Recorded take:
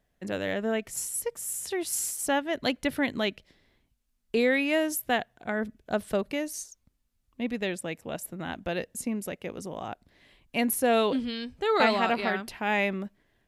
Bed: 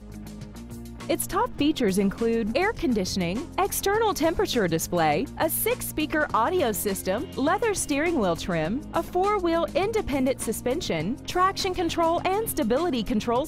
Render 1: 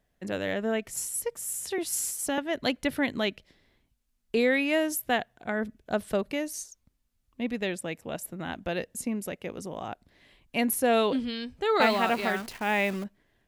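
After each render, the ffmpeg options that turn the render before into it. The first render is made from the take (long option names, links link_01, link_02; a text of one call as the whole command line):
ffmpeg -i in.wav -filter_complex "[0:a]asettb=1/sr,asplit=3[link_01][link_02][link_03];[link_01]atrim=end=1.784[link_04];[link_02]atrim=start=1.78:end=2.38,asetpts=PTS-STARTPTS,afade=type=in:duration=0.004:curve=qsin,afade=type=out:start_time=0.596:duration=0.004:curve=qsin,acrossover=split=410|3000[link_05][link_06][link_07];[link_06]acompressor=threshold=-29dB:ratio=6:attack=3.2:release=140:knee=2.83:detection=peak[link_08];[link_05][link_08][link_07]amix=inputs=3:normalize=0[link_09];[link_03]atrim=start=2.376[link_10];[link_04][link_09]acrossfade=duration=0.004:curve1=hsin:curve2=qsin[link_11];[link_11][link_10]acrossfade=duration=0.004:curve1=qsin:curve2=hsin,asettb=1/sr,asplit=3[link_12][link_13][link_14];[link_12]atrim=end=11.814[link_15];[link_13]atrim=start=11.81:end=13.04,asetpts=PTS-STARTPTS,afade=type=in:duration=0.004:curve=qsin,afade=type=out:start_time=1.226:duration=0.004:curve=qsin,acrusher=bits=8:dc=4:mix=0:aa=0.000001[link_16];[link_14]atrim=start=13.036[link_17];[link_15][link_16]acrossfade=duration=0.004:curve1=hsin:curve2=qsin[link_18];[link_18][link_17]acrossfade=duration=0.004:curve1=qsin:curve2=hsin" out.wav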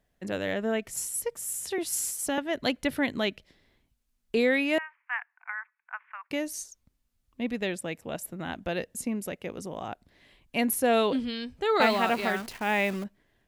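ffmpeg -i in.wav -filter_complex "[0:a]asettb=1/sr,asplit=3[link_01][link_02][link_03];[link_01]atrim=end=4.784[link_04];[link_02]atrim=start=4.78:end=6.31,asetpts=PTS-STARTPTS,afade=type=in:duration=0.004:curve=qsin,afade=type=out:start_time=1.526:duration=0.004:curve=qsin,asuperpass=centerf=1500:order=12:qfactor=0.97[link_05];[link_03]atrim=start=6.306[link_06];[link_04][link_05]acrossfade=duration=0.004:curve1=hsin:curve2=qsin[link_07];[link_07][link_06]acrossfade=duration=0.004:curve1=qsin:curve2=hsin" out.wav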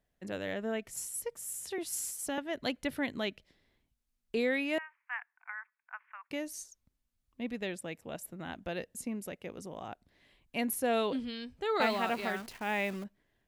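ffmpeg -i in.wav -af "volume=-6.5dB" out.wav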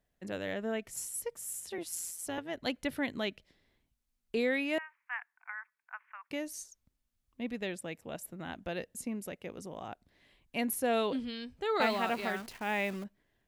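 ffmpeg -i in.wav -filter_complex "[0:a]asettb=1/sr,asplit=3[link_01][link_02][link_03];[link_01]atrim=end=1.604[link_04];[link_02]atrim=start=1.6:end=2.67,asetpts=PTS-STARTPTS,afade=type=in:duration=0.004:curve=qsin,afade=type=out:start_time=1.066:duration=0.004:curve=qsin,tremolo=f=170:d=0.519[link_05];[link_03]atrim=start=2.666[link_06];[link_04][link_05]acrossfade=duration=0.004:curve1=hsin:curve2=qsin[link_07];[link_07][link_06]acrossfade=duration=0.004:curve1=qsin:curve2=hsin" out.wav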